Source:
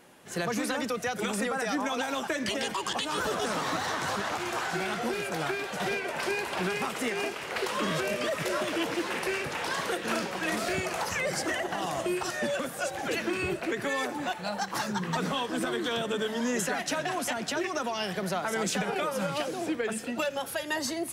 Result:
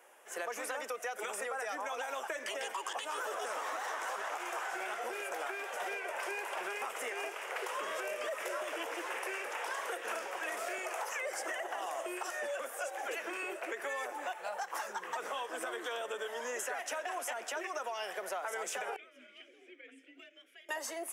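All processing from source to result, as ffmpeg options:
-filter_complex "[0:a]asettb=1/sr,asplit=3[s0][s1][s2];[s0]atrim=end=18.964[s3];[s1]atrim=start=18.96:end=20.69,asetpts=PTS-STARTPTS,afade=t=in:d=0.004:c=qsin,afade=t=out:st=1.726:d=0.004:c=qsin,bandreject=f=60:t=h:w=6,bandreject=f=120:t=h:w=6,bandreject=f=180:t=h:w=6,bandreject=f=240:t=h:w=6,bandreject=f=300:t=h:w=6,bandreject=f=360:t=h:w=6,bandreject=f=420:t=h:w=6,bandreject=f=480:t=h:w=6,bandreject=f=540:t=h:w=6,afreqshift=48,asplit=3[s4][s5][s6];[s4]bandpass=f=270:t=q:w=8,volume=1[s7];[s5]bandpass=f=2290:t=q:w=8,volume=0.501[s8];[s6]bandpass=f=3010:t=q:w=8,volume=0.355[s9];[s7][s8][s9]amix=inputs=3:normalize=0[s10];[s2]atrim=start=20.686[s11];[s3][s10]acrossfade=d=0.004:c1=hsin:c2=qsin[s12];[s12][s11]acrossfade=d=0.004:c1=qsin:c2=hsin,highpass=f=460:w=0.5412,highpass=f=460:w=1.3066,equalizer=f=4200:w=2.5:g=-14,acompressor=threshold=0.0224:ratio=3,volume=0.75"

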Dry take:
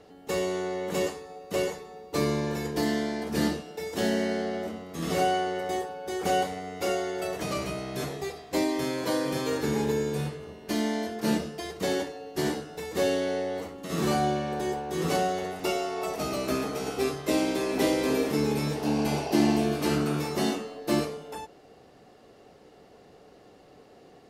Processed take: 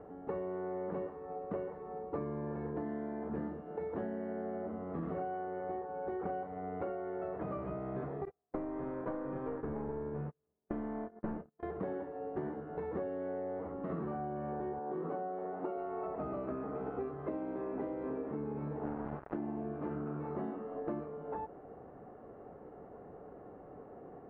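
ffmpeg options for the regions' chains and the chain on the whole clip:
-filter_complex "[0:a]asettb=1/sr,asplit=3[s0][s1][s2];[s0]atrim=end=8.254[s3];[s1]atrim=start=8.25:end=11.63,asetpts=PTS-STARTPTS,afade=t=in:d=0.004:c=qsin,afade=t=out:st=3.376:d=0.004:c=qsin,lowpass=3900,aeval=exprs='clip(val(0),-1,0.0355)':c=same,agate=range=0.00631:threshold=0.0224:ratio=16:release=100:detection=peak[s4];[s2]atrim=start=11.626[s5];[s3][s4]acrossfade=d=0.004:c1=hsin:c2=qsin[s6];[s6][s5]acrossfade=d=0.004:c1=qsin:c2=hsin,asettb=1/sr,asplit=3[s7][s8][s9];[s7]atrim=end=14.794[s10];[s8]atrim=start=14.79:end=15.78,asetpts=PTS-STARTPTS,afade=t=in:d=0.004:c=qsin,afade=t=out:st=0.986:d=0.004:c=qsin,highpass=220,lowpass=5900,equalizer=f=2300:t=o:w=1.1:g=-6[s11];[s9]atrim=start=15.776[s12];[s10][s11]acrossfade=d=0.004:c1=hsin:c2=qsin[s13];[s13][s12]acrossfade=d=0.004:c1=qsin:c2=hsin,asettb=1/sr,asplit=3[s14][s15][s16];[s14]atrim=end=18.854[s17];[s15]atrim=start=18.85:end=19.37,asetpts=PTS-STARTPTS,afade=t=in:d=0.004:c=qsin,afade=t=out:st=0.516:d=0.004:c=qsin,equalizer=f=68:w=1.1:g=6,acrusher=bits=3:mix=0:aa=0.5[s18];[s16]atrim=start=19.366[s19];[s17][s18]acrossfade=d=0.004:c1=hsin:c2=qsin[s20];[s20][s19]acrossfade=d=0.004:c1=qsin:c2=hsin,lowpass=f=1400:w=0.5412,lowpass=f=1400:w=1.3066,acompressor=threshold=0.0126:ratio=12,volume=1.33"

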